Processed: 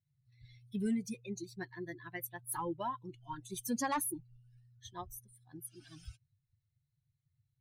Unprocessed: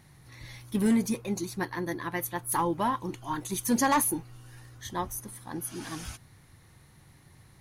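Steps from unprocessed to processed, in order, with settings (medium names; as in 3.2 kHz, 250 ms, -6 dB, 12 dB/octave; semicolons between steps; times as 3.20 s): expander on every frequency bin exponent 2; compression 1.5:1, threshold -33 dBFS, peak gain reduction 4.5 dB; trim -4 dB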